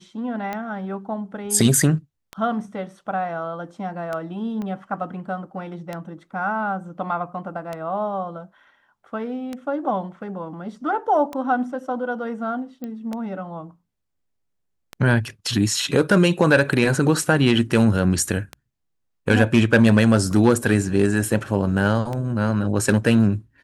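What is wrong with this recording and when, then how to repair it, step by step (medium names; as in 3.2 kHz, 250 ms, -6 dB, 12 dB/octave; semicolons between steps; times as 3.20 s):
tick 33 1/3 rpm -15 dBFS
4.62 s: pop -20 dBFS
12.84 s: pop -20 dBFS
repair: de-click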